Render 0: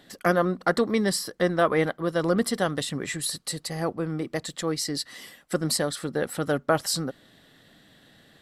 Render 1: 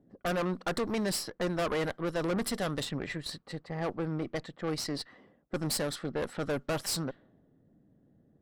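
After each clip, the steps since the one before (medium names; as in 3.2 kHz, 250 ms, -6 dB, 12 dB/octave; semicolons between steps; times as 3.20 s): level-controlled noise filter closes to 340 Hz, open at -22 dBFS; valve stage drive 27 dB, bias 0.7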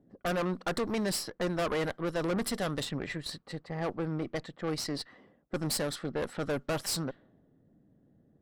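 no audible change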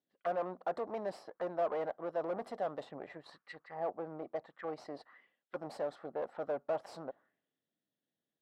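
auto-wah 690–3800 Hz, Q 2.7, down, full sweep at -32.5 dBFS; trim +2 dB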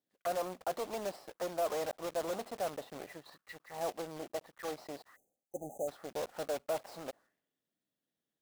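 block-companded coder 3-bit; spectral selection erased 5.16–5.88 s, 850–6000 Hz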